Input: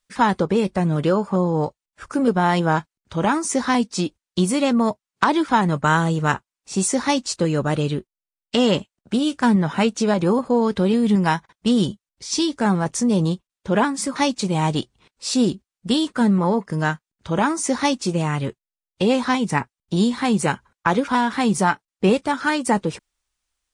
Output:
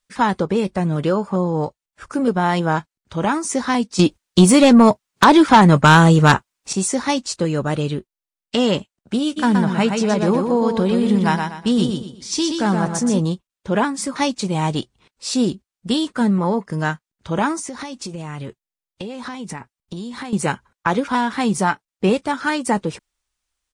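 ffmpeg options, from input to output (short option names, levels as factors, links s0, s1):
-filter_complex "[0:a]asettb=1/sr,asplit=3[s0][s1][s2];[s0]atrim=end=3.994[s3];[s1]atrim=start=3.99:end=6.73,asetpts=PTS-STARTPTS,afade=t=in:d=0.004:c=qsin,afade=t=out:st=2.736:d=0.004:c=qsin,aeval=exprs='0.668*sin(PI/2*2*val(0)/0.668)':c=same[s4];[s2]atrim=start=6.726[s5];[s3][s4]acrossfade=d=0.004:c1=hsin:c2=qsin[s6];[s6][s5]acrossfade=d=0.004:c1=qsin:c2=hsin,asplit=3[s7][s8][s9];[s7]afade=t=out:st=9.36:d=0.02[s10];[s8]aecho=1:1:122|244|366|488:0.562|0.18|0.0576|0.0184,afade=t=in:st=9.36:d=0.02,afade=t=out:st=13.18:d=0.02[s11];[s9]afade=t=in:st=13.18:d=0.02[s12];[s10][s11][s12]amix=inputs=3:normalize=0,asettb=1/sr,asplit=3[s13][s14][s15];[s13]atrim=end=17.594[s16];[s14]atrim=start=17.59:end=20.33,asetpts=PTS-STARTPTS,afade=t=in:d=0.004:c=qsin,afade=t=out:st=2.736:d=0.004:c=qsin,acompressor=threshold=0.0501:ratio=16:attack=3.2:release=140:knee=1:detection=peak[s17];[s15]atrim=start=20.326[s18];[s16][s17]acrossfade=d=0.004:c1=hsin:c2=qsin[s19];[s19][s18]acrossfade=d=0.004:c1=qsin:c2=hsin"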